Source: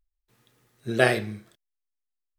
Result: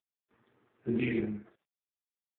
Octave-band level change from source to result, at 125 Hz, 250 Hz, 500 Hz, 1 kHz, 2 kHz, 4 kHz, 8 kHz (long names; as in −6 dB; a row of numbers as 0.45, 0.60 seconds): −7.5 dB, −0.5 dB, −12.0 dB, −26.5 dB, −15.5 dB, −17.0 dB, below −35 dB